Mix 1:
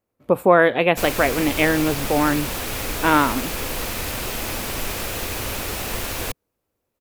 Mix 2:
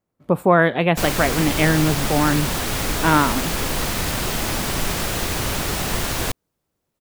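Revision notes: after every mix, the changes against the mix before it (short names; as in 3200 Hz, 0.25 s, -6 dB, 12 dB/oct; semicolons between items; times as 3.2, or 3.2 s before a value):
background +4.5 dB; master: add thirty-one-band EQ 160 Hz +10 dB, 500 Hz -4 dB, 2500 Hz -4 dB, 12500 Hz -6 dB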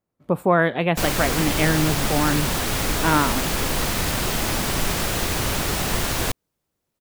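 speech -3.0 dB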